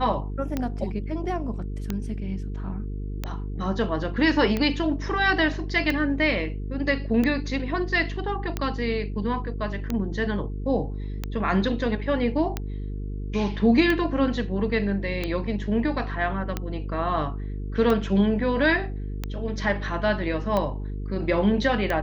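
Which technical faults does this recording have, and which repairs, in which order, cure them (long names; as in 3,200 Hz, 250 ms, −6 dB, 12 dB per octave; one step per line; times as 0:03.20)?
mains buzz 50 Hz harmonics 9 −31 dBFS
scratch tick 45 rpm −13 dBFS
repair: click removal
hum removal 50 Hz, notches 9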